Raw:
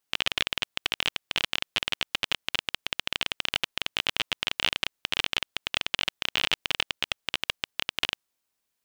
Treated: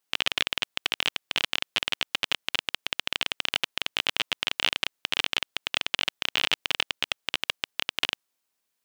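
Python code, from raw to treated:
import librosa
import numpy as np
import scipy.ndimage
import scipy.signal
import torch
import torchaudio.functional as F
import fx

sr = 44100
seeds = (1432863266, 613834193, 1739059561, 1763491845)

y = fx.low_shelf(x, sr, hz=110.0, db=-9.5)
y = y * 10.0 ** (1.0 / 20.0)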